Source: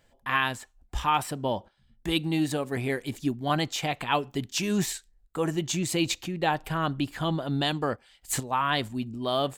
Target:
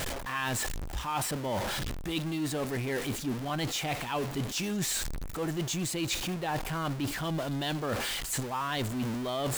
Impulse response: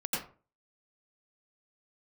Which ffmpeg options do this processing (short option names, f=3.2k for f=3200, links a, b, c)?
-af "aeval=exprs='val(0)+0.5*0.0447*sgn(val(0))':c=same,areverse,acompressor=threshold=-30dB:ratio=6,areverse"